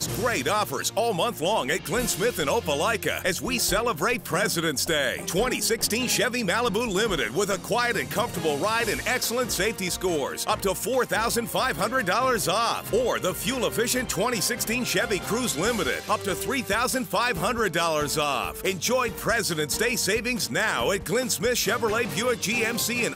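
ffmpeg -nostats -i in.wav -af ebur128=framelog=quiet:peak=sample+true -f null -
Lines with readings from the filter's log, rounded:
Integrated loudness:
  I:         -24.6 LUFS
  Threshold: -34.6 LUFS
Loudness range:
  LRA:         1.0 LU
  Threshold: -44.6 LUFS
  LRA low:   -25.0 LUFS
  LRA high:  -24.0 LUFS
Sample peak:
  Peak:      -10.9 dBFS
True peak:
  Peak:      -10.0 dBFS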